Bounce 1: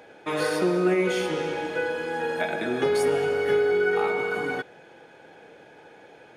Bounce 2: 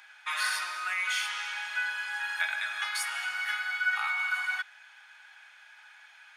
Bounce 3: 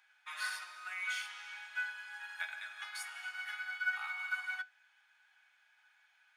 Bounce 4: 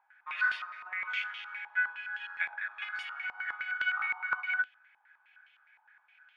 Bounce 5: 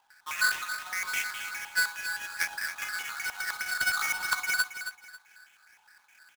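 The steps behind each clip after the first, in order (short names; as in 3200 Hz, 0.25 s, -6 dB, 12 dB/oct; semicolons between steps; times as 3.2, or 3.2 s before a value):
inverse Chebyshev high-pass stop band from 460 Hz, stop band 50 dB; gain +2.5 dB
companded quantiser 8-bit; resonator 750 Hz, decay 0.24 s, mix 60%; upward expander 1.5:1, over -46 dBFS
stepped low-pass 9.7 Hz 910–3000 Hz
half-waves squared off; feedback echo 0.272 s, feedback 26%, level -10 dB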